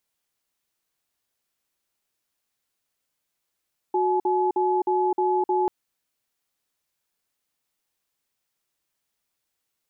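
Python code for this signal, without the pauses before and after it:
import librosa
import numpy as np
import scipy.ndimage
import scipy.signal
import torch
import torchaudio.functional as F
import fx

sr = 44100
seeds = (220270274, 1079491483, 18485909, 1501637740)

y = fx.cadence(sr, length_s=1.74, low_hz=367.0, high_hz=853.0, on_s=0.26, off_s=0.05, level_db=-22.0)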